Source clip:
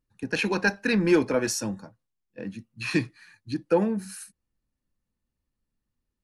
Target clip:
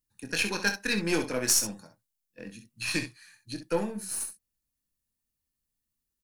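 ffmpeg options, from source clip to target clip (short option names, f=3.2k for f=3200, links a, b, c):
-af "crystalizer=i=5:c=0,aeval=exprs='0.794*(cos(1*acos(clip(val(0)/0.794,-1,1)))-cos(1*PI/2))+0.316*(cos(2*acos(clip(val(0)/0.794,-1,1)))-cos(2*PI/2))+0.0794*(cos(4*acos(clip(val(0)/0.794,-1,1)))-cos(4*PI/2))+0.0224*(cos(7*acos(clip(val(0)/0.794,-1,1)))-cos(7*PI/2))+0.0355*(cos(8*acos(clip(val(0)/0.794,-1,1)))-cos(8*PI/2))':c=same,aecho=1:1:24|65:0.355|0.335,volume=-7.5dB"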